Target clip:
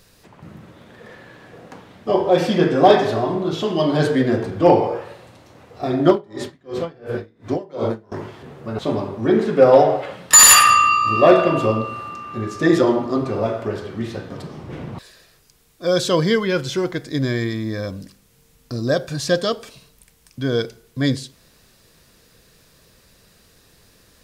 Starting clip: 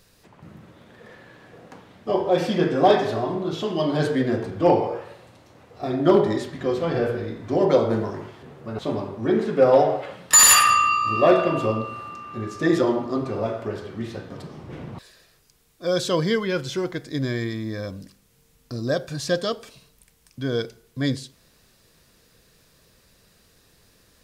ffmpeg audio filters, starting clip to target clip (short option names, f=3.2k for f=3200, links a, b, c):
-filter_complex "[0:a]asettb=1/sr,asplit=3[a][b][c];[a]atrim=end=6.084[d];[b]atrim=start=6.08:end=8.12,asetpts=PTS-STARTPTS,afade=t=in:d=0.004:c=qsin,afade=t=out:st=2.036:d=0.004:c=qsin,aeval=exprs='val(0)*pow(10,-30*(0.5-0.5*cos(2*PI*2.8*n/s))/20)':c=same[e];[c]atrim=start=8.116[f];[d][e]acrossfade=d=0.004:c1=hsin:c2=qsin[g];[g][f]acrossfade=d=0.004:c1=qsin:c2=hsin,volume=4.5dB"